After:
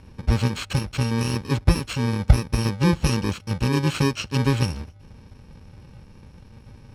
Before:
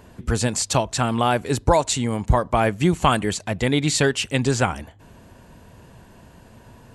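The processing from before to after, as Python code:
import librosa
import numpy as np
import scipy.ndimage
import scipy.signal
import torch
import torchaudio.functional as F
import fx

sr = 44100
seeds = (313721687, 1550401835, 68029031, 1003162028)

y = fx.bit_reversed(x, sr, seeds[0], block=64)
y = scipy.signal.sosfilt(scipy.signal.butter(2, 4300.0, 'lowpass', fs=sr, output='sos'), y)
y = fx.low_shelf(y, sr, hz=190.0, db=6.5)
y = y * librosa.db_to_amplitude(-1.0)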